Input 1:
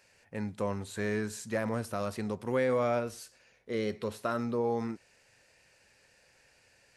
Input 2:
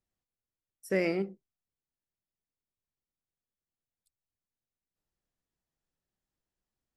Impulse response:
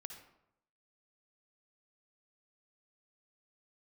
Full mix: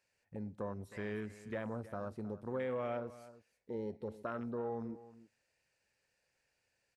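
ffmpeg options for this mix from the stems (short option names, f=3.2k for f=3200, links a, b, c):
-filter_complex "[0:a]afwtdn=0.0141,acompressor=threshold=-51dB:ratio=1.5,volume=-1dB,asplit=4[a][b][c][d];[b]volume=-15dB[e];[c]volume=-15.5dB[f];[1:a]highpass=1.4k,volume=-17dB,asplit=2[g][h];[h]volume=-12.5dB[i];[d]apad=whole_len=307008[j];[g][j]sidechaincompress=threshold=-49dB:ratio=8:attack=16:release=117[k];[2:a]atrim=start_sample=2205[l];[e][l]afir=irnorm=-1:irlink=0[m];[f][i]amix=inputs=2:normalize=0,aecho=0:1:315:1[n];[a][k][m][n]amix=inputs=4:normalize=0"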